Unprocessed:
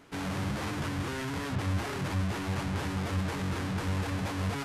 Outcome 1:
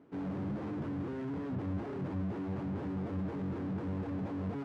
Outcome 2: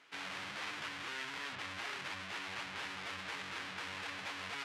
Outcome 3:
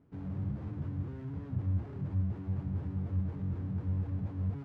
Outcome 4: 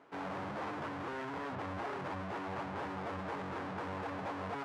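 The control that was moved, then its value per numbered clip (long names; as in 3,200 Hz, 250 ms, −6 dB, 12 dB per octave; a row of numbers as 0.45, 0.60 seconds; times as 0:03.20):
resonant band-pass, frequency: 280, 2,700, 100, 770 Hertz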